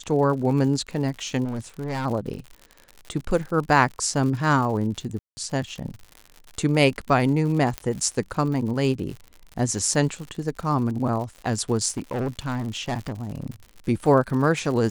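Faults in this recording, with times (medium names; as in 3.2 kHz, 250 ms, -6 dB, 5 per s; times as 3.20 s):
crackle 91 per s -32 dBFS
1.44–2.06 s: clipped -25 dBFS
5.19–5.37 s: dropout 180 ms
7.78 s: pop -12 dBFS
11.88–13.46 s: clipped -22.5 dBFS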